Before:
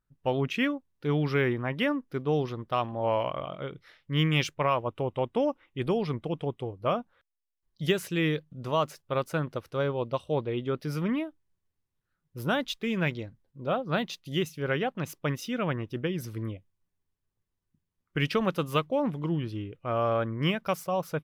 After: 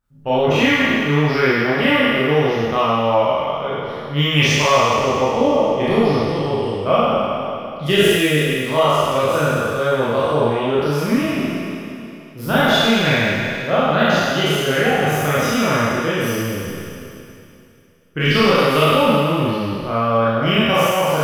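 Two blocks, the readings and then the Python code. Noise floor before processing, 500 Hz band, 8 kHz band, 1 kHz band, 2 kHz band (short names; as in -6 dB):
-84 dBFS, +13.0 dB, +17.5 dB, +14.5 dB, +16.0 dB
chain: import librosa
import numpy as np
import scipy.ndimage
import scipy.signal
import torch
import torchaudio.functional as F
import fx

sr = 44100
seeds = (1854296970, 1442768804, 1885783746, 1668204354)

y = fx.spec_trails(x, sr, decay_s=2.77)
y = fx.rev_schroeder(y, sr, rt60_s=0.32, comb_ms=27, drr_db=-4.5)
y = y * librosa.db_to_amplitude(2.5)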